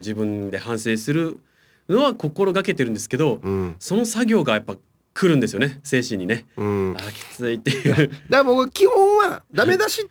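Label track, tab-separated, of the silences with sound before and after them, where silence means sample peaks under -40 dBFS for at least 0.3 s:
1.370000	1.890000	silence
4.770000	5.160000	silence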